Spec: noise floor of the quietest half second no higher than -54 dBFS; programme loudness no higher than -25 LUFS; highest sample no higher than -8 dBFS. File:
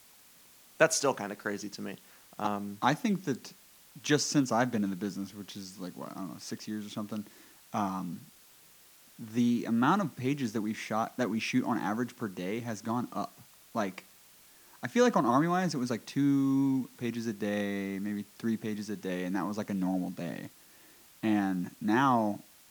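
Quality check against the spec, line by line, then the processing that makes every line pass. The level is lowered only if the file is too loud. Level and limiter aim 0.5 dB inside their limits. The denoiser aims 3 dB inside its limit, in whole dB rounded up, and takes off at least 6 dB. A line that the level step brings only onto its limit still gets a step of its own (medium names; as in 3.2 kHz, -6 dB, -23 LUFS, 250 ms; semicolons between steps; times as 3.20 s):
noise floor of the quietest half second -58 dBFS: pass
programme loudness -31.5 LUFS: pass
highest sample -7.5 dBFS: fail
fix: peak limiter -8.5 dBFS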